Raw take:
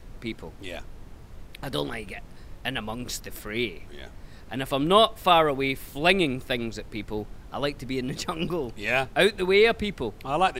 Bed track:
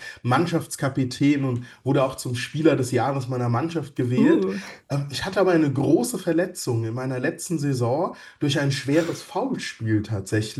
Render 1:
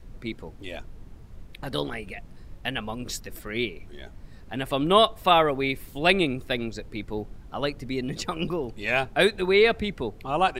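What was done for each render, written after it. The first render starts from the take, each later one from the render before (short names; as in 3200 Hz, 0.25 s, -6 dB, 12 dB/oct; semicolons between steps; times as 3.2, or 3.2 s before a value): denoiser 6 dB, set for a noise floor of -45 dBFS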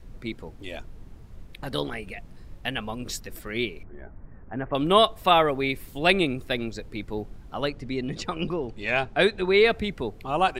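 3.83–4.75 inverse Chebyshev low-pass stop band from 4300 Hz, stop band 50 dB; 7.68–9.54 air absorption 55 m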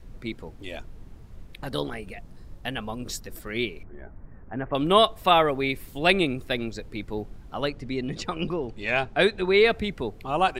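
1.69–3.47 bell 2400 Hz -4.5 dB 0.97 oct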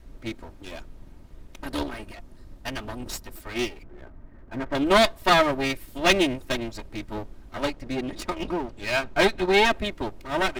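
minimum comb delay 3.2 ms; in parallel at -9 dB: backlash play -25 dBFS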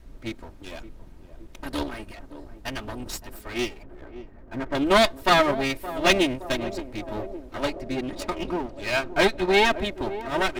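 narrowing echo 0.569 s, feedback 75%, band-pass 430 Hz, level -12 dB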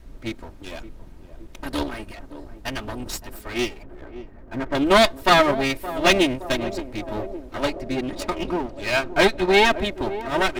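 gain +3 dB; limiter -3 dBFS, peak gain reduction 1.5 dB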